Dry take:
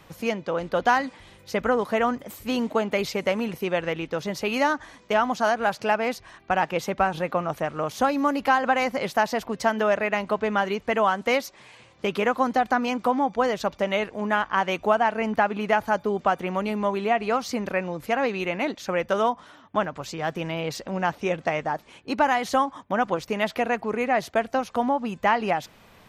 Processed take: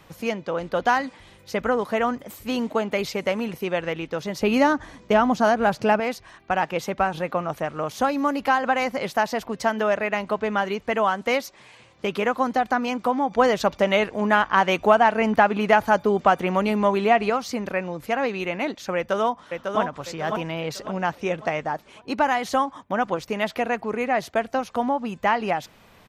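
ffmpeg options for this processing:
-filter_complex "[0:a]asettb=1/sr,asplit=3[a][b][c];[a]atrim=end=4.414[d];[b]atrim=start=4.41:end=6,asetpts=PTS-STARTPTS,afade=t=in:d=0.004:c=qsin,afade=t=out:st=1.586:d=0.004:c=qsin,lowshelf=f=460:g=10.5[e];[c]atrim=start=5.996[f];[d][e]acrossfade=d=0.004:c1=hsin:c2=qsin[g];[g][f]acrossfade=d=0.004:c1=qsin:c2=hsin,asettb=1/sr,asplit=3[h][i][j];[h]atrim=end=13.314[k];[i]atrim=start=13.31:end=17.3,asetpts=PTS-STARTPTS,afade=t=in:d=0.004:c=qsin,afade=t=out:st=3.986:d=0.004:c=qsin,acontrast=21[l];[j]atrim=start=17.296[m];[k][l]acrossfade=d=0.004:c1=hsin:c2=qsin[n];[n][m]acrossfade=d=0.004:c1=qsin:c2=hsin,asplit=2[o][p];[p]afade=t=in:st=18.96:d=0.01,afade=t=out:st=19.81:d=0.01,aecho=0:1:550|1100|1650|2200|2750:0.562341|0.224937|0.0899746|0.0359898|0.0143959[q];[o][q]amix=inputs=2:normalize=0"

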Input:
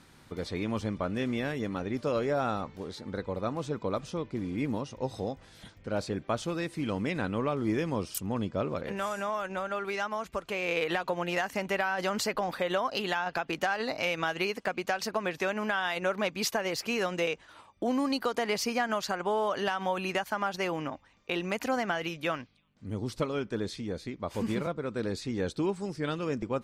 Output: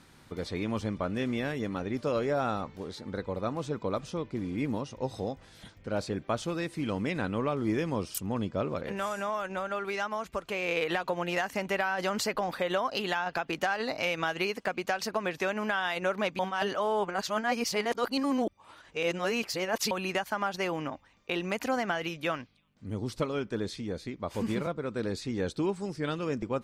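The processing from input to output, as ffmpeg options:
-filter_complex "[0:a]asplit=3[a][b][c];[a]atrim=end=16.392[d];[b]atrim=start=16.388:end=19.912,asetpts=PTS-STARTPTS,areverse[e];[c]atrim=start=19.908[f];[d][e]acrossfade=d=0.004:c1=hsin:c2=hsin[g];[g][f]acrossfade=d=0.004:c1=hsin:c2=hsin"

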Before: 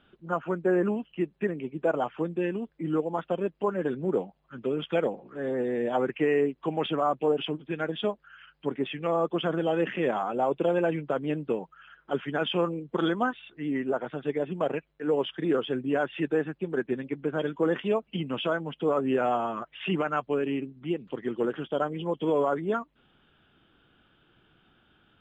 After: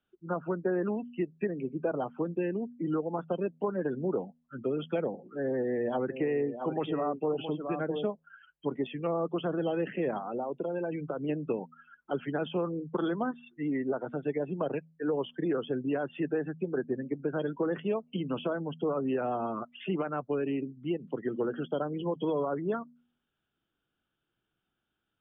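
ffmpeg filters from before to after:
-filter_complex "[0:a]asettb=1/sr,asplit=3[a][b][c];[a]atrim=end=5.434[d];[b]atrim=start=5.43:end=8.07,asetpts=PTS-STARTPTS,afade=t=in:d=0.004:c=qsin,afade=t=out:st=2.636:d=0.004:c=qsin,aecho=1:1:667:0.299,atrim=end_sample=116424[e];[c]atrim=start=8.066[f];[d][e]acrossfade=d=0.004:c1=hsin:c2=qsin[g];[g][f]acrossfade=d=0.004:c1=qsin:c2=hsin,asettb=1/sr,asplit=3[h][i][j];[h]atrim=end=10.184[k];[i]atrim=start=10.18:end=11.29,asetpts=PTS-STARTPTS,afade=t=in:d=0.004:c=qsin,afade=t=out:st=1.106:d=0.004:c=qsin,acompressor=threshold=-30dB:ratio=5:attack=3.2:release=140:knee=1:detection=peak[l];[j]atrim=start=11.286[m];[k][l]acrossfade=d=0.004:c1=hsin:c2=qsin[n];[n][m]acrossfade=d=0.004:c1=qsin:c2=hsin,asettb=1/sr,asplit=3[o][p][q];[o]atrim=end=16.664[r];[p]atrim=start=16.66:end=17.25,asetpts=PTS-STARTPTS,afade=t=in:d=0.004:c=qsin,afade=t=out:st=0.586:d=0.004:c=qsin,lowpass=1.6k[s];[q]atrim=start=17.246[t];[r][s]acrossfade=d=0.004:c1=hsin:c2=qsin[u];[u][t]acrossfade=d=0.004:c1=qsin:c2=hsin,afftdn=nr=22:nf=-41,bandreject=f=80.43:t=h:w=4,bandreject=f=160.86:t=h:w=4,bandreject=f=241.29:t=h:w=4,acrossover=split=200|550|1300[v][w][x][y];[v]acompressor=threshold=-41dB:ratio=4[z];[w]acompressor=threshold=-33dB:ratio=4[aa];[x]acompressor=threshold=-40dB:ratio=4[ab];[y]acompressor=threshold=-49dB:ratio=4[ac];[z][aa][ab][ac]amix=inputs=4:normalize=0,volume=1.5dB"

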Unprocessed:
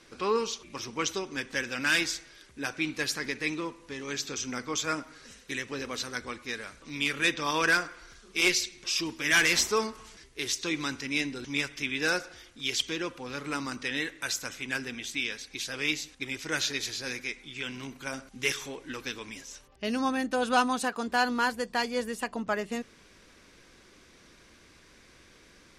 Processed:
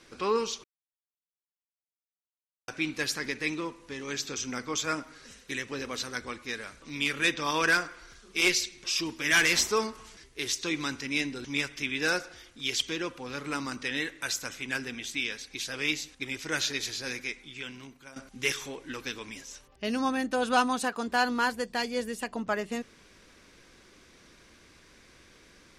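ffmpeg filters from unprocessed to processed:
-filter_complex "[0:a]asettb=1/sr,asplit=3[a][b][c];[a]atrim=end=21.654[d];[b]atrim=start=21.65:end=22.32,asetpts=PTS-STARTPTS,afade=t=in:d=0.004:c=qsin,afade=t=out:st=0.666:d=0.004:c=qsin,equalizer=f=1.1k:w=1.4:g=-5[e];[c]atrim=start=22.316[f];[d][e]acrossfade=d=0.004:c1=hsin:c2=qsin[g];[g][f]acrossfade=d=0.004:c1=qsin:c2=hsin,asplit=4[h][i][j][k];[h]atrim=end=0.64,asetpts=PTS-STARTPTS,afade=t=out:st=0.636:d=0.004:c=hsin[l];[i]atrim=start=0.64:end=2.68,asetpts=PTS-STARTPTS,volume=0[m];[j]atrim=start=2.68:end=18.16,asetpts=PTS-STARTPTS,afade=t=in:d=0.004:c=hsin,afade=t=out:st=14.61:d=0.87:silence=0.158489[n];[k]atrim=start=18.16,asetpts=PTS-STARTPTS,afade=t=in:d=0.004:c=hsin:silence=0.158489[o];[l][m][n][o]concat=n=4:v=0:a=1"

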